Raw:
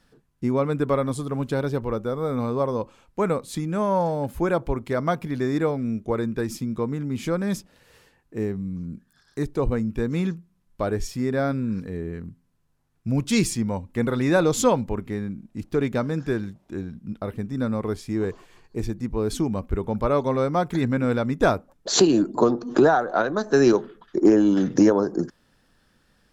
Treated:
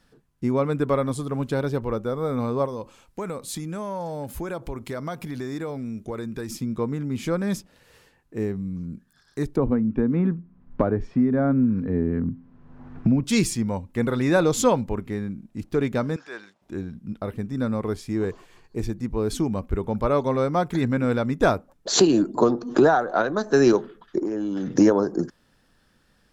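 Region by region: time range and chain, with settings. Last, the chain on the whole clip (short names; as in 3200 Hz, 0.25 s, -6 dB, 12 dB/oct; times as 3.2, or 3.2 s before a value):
2.65–6.51 high shelf 3700 Hz +8 dB + compressor 3:1, threshold -29 dBFS
9.56–13.24 LPF 1500 Hz + bell 250 Hz +9.5 dB 0.29 oct + three-band squash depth 100%
16.16–16.62 BPF 780–6800 Hz + transient shaper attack -5 dB, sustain +1 dB
24.2–24.73 high shelf 8100 Hz -4.5 dB + compressor 12:1, threshold -23 dBFS
whole clip: dry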